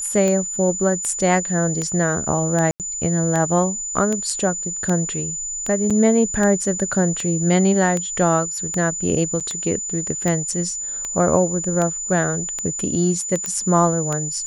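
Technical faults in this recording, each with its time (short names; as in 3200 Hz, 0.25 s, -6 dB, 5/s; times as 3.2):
tick 78 rpm -11 dBFS
tone 7000 Hz -25 dBFS
2.71–2.8 gap 88 ms
5.9–5.91 gap 5.7 ms
9.4–9.41 gap 6.5 ms
13.46 pop -10 dBFS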